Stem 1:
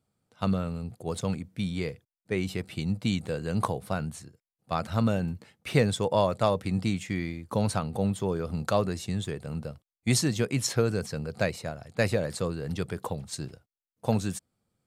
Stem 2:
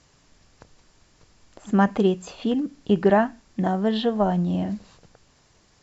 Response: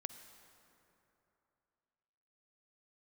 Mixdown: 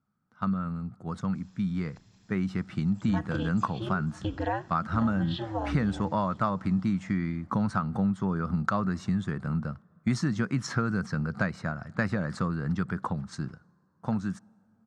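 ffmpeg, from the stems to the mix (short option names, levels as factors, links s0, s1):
-filter_complex "[0:a]firequalizer=gain_entry='entry(100,0);entry(190,9);entry(450,-7);entry(1300,12);entry(2500,-7);entry(3800,-8);entry(5600,-5);entry(12000,-26)':delay=0.05:min_phase=1,dynaudnorm=f=340:g=13:m=3.76,volume=0.501,asplit=2[s0][s1];[s1]volume=0.133[s2];[1:a]equalizer=f=3900:t=o:w=1.4:g=6,aecho=1:1:1.2:0.53,aeval=exprs='val(0)*sin(2*PI*110*n/s)':c=same,adelay=1350,volume=0.422,asplit=2[s3][s4];[s4]volume=0.0944[s5];[2:a]atrim=start_sample=2205[s6];[s2][s6]afir=irnorm=-1:irlink=0[s7];[s5]aecho=0:1:494|988|1482|1976|2470|2964|3458:1|0.51|0.26|0.133|0.0677|0.0345|0.0176[s8];[s0][s3][s7][s8]amix=inputs=4:normalize=0,acompressor=threshold=0.0501:ratio=2.5"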